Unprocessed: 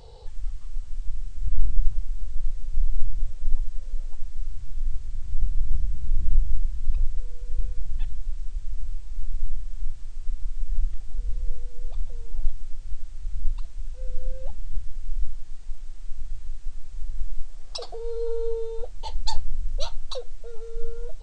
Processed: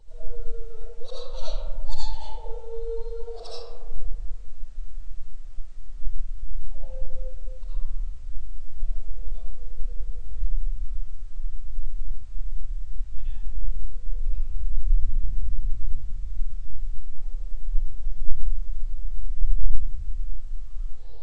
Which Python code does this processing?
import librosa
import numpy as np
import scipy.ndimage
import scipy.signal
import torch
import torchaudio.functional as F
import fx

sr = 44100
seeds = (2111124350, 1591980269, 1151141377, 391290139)

y = np.flip(x).copy()
y = fx.rev_freeverb(y, sr, rt60_s=1.7, hf_ratio=0.35, predelay_ms=40, drr_db=-10.0)
y = y * librosa.db_to_amplitude(-13.0)